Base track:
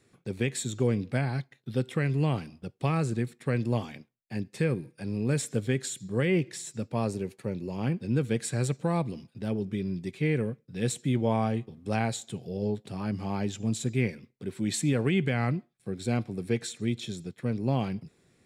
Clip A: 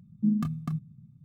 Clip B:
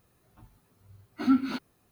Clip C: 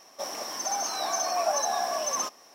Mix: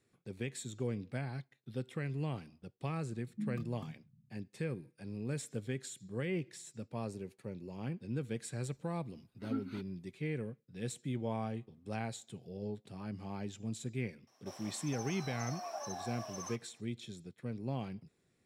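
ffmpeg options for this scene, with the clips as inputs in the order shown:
ffmpeg -i bed.wav -i cue0.wav -i cue1.wav -i cue2.wav -filter_complex "[0:a]volume=-11dB[link_01];[2:a]aresample=32000,aresample=44100[link_02];[3:a]highshelf=frequency=8300:gain=-5[link_03];[1:a]atrim=end=1.24,asetpts=PTS-STARTPTS,volume=-14.5dB,afade=type=in:duration=0.004:curve=hsin,afade=type=out:start_time=1.236:duration=0.004:curve=hsin,adelay=3150[link_04];[link_02]atrim=end=1.91,asetpts=PTS-STARTPTS,volume=-16dB,afade=type=in:duration=0.004:curve=hsin,afade=type=out:start_time=1.906:duration=0.004:curve=hsin,adelay=8230[link_05];[link_03]atrim=end=2.54,asetpts=PTS-STARTPTS,volume=-16dB,afade=type=in:duration=0.004:curve=hsin,afade=type=out:start_time=2.536:duration=0.004:curve=hsin,adelay=14270[link_06];[link_01][link_04][link_05][link_06]amix=inputs=4:normalize=0" out.wav

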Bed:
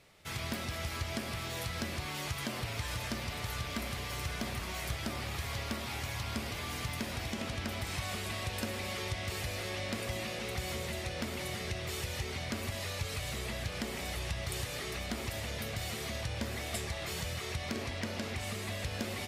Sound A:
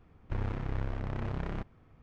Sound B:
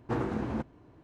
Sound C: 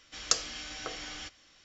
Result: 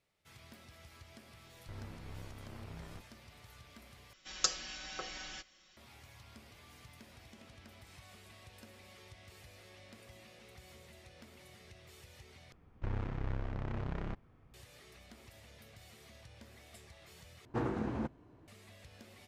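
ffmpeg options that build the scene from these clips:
ffmpeg -i bed.wav -i cue0.wav -i cue1.wav -i cue2.wav -filter_complex "[1:a]asplit=2[link_01][link_02];[0:a]volume=-19dB[link_03];[link_01]asplit=2[link_04][link_05];[link_05]adelay=18,volume=-3dB[link_06];[link_04][link_06]amix=inputs=2:normalize=0[link_07];[3:a]aecho=1:1:5.4:0.77[link_08];[link_03]asplit=4[link_09][link_10][link_11][link_12];[link_09]atrim=end=4.134[link_13];[link_08]atrim=end=1.64,asetpts=PTS-STARTPTS,volume=-6dB[link_14];[link_10]atrim=start=5.766:end=12.524[link_15];[link_02]atrim=end=2.02,asetpts=PTS-STARTPTS,volume=-3.5dB[link_16];[link_11]atrim=start=14.536:end=17.454[link_17];[2:a]atrim=end=1.03,asetpts=PTS-STARTPTS,volume=-4dB[link_18];[link_12]atrim=start=18.476[link_19];[link_07]atrim=end=2.02,asetpts=PTS-STARTPTS,volume=-15dB,afade=type=in:duration=0.004:curve=hsin,afade=type=out:start_time=2.016:duration=0.004:curve=hsin,adelay=1370[link_20];[link_13][link_14]acrossfade=duration=0.004:curve1=hsin:curve2=hsin[link_21];[link_21][link_15]acrossfade=duration=0.004:curve1=hsin:curve2=hsin[link_22];[link_22][link_16]acrossfade=duration=0.004:curve1=hsin:curve2=hsin[link_23];[link_23][link_17]acrossfade=duration=0.004:curve1=hsin:curve2=hsin[link_24];[link_24][link_18]acrossfade=duration=0.004:curve1=hsin:curve2=hsin[link_25];[link_25][link_19]acrossfade=duration=0.004:curve1=hsin:curve2=hsin[link_26];[link_26][link_20]amix=inputs=2:normalize=0" out.wav

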